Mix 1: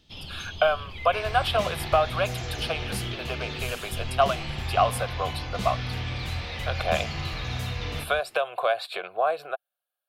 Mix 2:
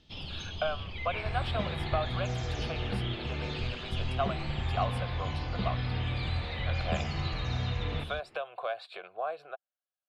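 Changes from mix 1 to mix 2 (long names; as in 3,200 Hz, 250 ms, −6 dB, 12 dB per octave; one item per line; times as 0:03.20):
speech −10.0 dB
second sound: add high-frequency loss of the air 380 metres
master: add high-frequency loss of the air 76 metres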